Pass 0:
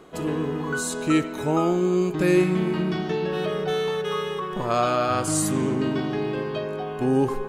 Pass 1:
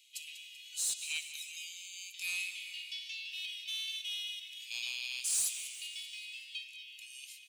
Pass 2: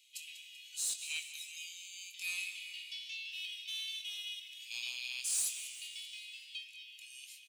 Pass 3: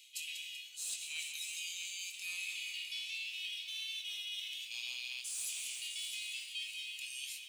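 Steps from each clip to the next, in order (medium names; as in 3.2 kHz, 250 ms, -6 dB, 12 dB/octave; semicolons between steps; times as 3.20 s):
steep high-pass 2.4 kHz 72 dB/octave; saturation -27 dBFS, distortion -12 dB; on a send: feedback delay 193 ms, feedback 56%, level -13 dB
doubling 24 ms -9 dB; trim -2.5 dB
reverse; compression 10:1, threshold -47 dBFS, peak gain reduction 16 dB; reverse; bit-crushed delay 655 ms, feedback 35%, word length 12-bit, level -8 dB; trim +8 dB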